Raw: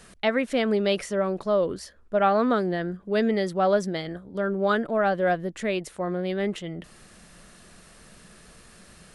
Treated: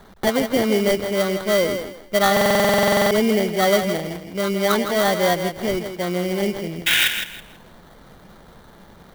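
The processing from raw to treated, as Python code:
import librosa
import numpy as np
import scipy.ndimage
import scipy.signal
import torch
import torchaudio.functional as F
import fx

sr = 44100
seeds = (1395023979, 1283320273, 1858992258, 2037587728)

p1 = fx.sample_hold(x, sr, seeds[0], rate_hz=2600.0, jitter_pct=0)
p2 = fx.spec_paint(p1, sr, seeds[1], shape='noise', start_s=6.86, length_s=0.22, low_hz=1400.0, high_hz=3900.0, level_db=-21.0)
p3 = scipy.signal.sosfilt(scipy.signal.butter(16, 6200.0, 'lowpass', fs=sr, output='sos'), p2)
p4 = fx.peak_eq(p3, sr, hz=1100.0, db=-2.5, octaves=0.77)
p5 = p4 + fx.echo_thinned(p4, sr, ms=163, feedback_pct=25, hz=180.0, wet_db=-8, dry=0)
p6 = fx.buffer_glitch(p5, sr, at_s=(2.32,), block=2048, repeats=16)
p7 = fx.clock_jitter(p6, sr, seeds[2], jitter_ms=0.026)
y = p7 * librosa.db_to_amplitude(4.5)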